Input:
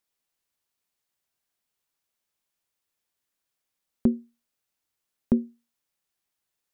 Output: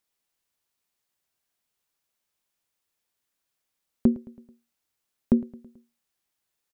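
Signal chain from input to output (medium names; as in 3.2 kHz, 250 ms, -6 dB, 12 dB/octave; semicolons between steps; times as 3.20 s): feedback delay 109 ms, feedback 56%, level -20 dB; trim +1.5 dB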